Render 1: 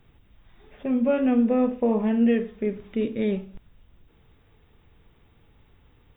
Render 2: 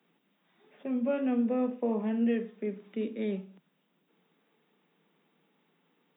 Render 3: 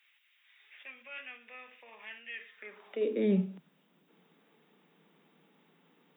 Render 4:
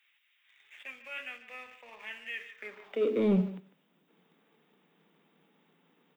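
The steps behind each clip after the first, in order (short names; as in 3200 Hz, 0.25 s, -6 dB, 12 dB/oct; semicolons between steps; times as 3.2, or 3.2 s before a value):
steep high-pass 160 Hz 96 dB/oct; gain -7.5 dB
limiter -28 dBFS, peak gain reduction 9 dB; high-pass sweep 2200 Hz -> 64 Hz, 2.48–3.78; gain +4.5 dB
sample leveller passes 1; speakerphone echo 0.15 s, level -13 dB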